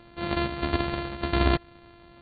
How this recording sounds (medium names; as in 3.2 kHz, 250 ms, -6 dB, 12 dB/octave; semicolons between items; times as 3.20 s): a buzz of ramps at a fixed pitch in blocks of 128 samples; AC-3